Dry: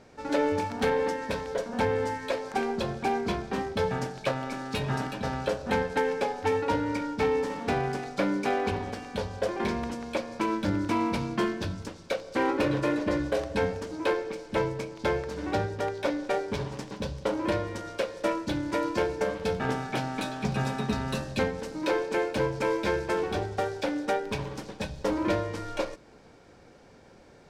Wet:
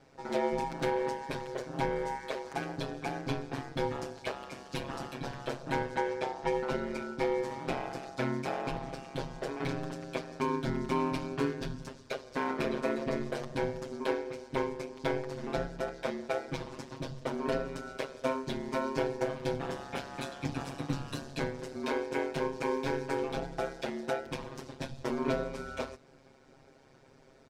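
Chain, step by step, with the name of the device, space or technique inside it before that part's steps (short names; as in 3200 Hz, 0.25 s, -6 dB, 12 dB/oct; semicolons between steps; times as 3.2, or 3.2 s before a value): 5.95–6.54 LPF 8700 Hz 12 dB/oct; ring-modulated robot voice (ring modulator 68 Hz; comb 7.5 ms, depth 92%); gain -5 dB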